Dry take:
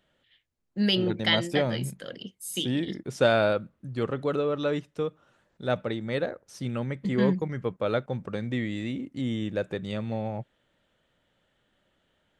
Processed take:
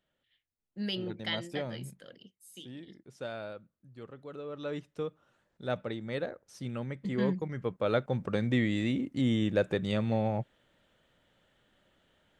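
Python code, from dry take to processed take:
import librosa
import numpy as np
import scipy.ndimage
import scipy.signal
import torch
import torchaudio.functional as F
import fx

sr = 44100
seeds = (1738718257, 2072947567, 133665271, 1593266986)

y = fx.gain(x, sr, db=fx.line((1.95, -10.5), (2.5, -18.0), (4.26, -18.0), (4.86, -6.0), (7.36, -6.0), (8.35, 2.0)))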